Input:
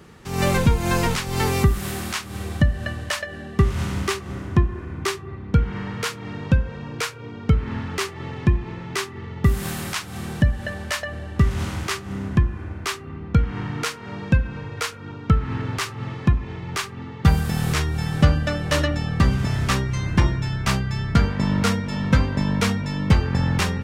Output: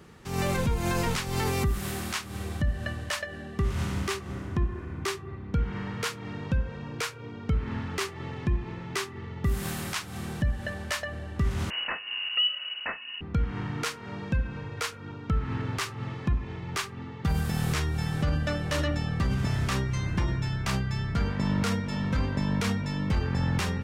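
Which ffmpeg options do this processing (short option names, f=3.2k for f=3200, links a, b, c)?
-filter_complex "[0:a]asettb=1/sr,asplit=3[a][b][c];[a]atrim=end=11.704[d];[b]atrim=start=11.7:end=13.21,asetpts=PTS-STARTPTS,afade=t=in:d=0.004:c=qsin,afade=t=out:st=1.506:d=0.004:c=qsin,lowpass=f=2.6k:t=q:w=0.5098,lowpass=f=2.6k:t=q:w=0.6013,lowpass=f=2.6k:t=q:w=0.9,lowpass=f=2.6k:t=q:w=2.563,afreqshift=-3000[e];[c]atrim=start=13.206[f];[d][e]acrossfade=d=0.004:c1=hsin:c2=qsin[g];[g][f]acrossfade=d=0.004:c1=qsin:c2=hsin,alimiter=limit=-13.5dB:level=0:latency=1:release=30,volume=-4.5dB"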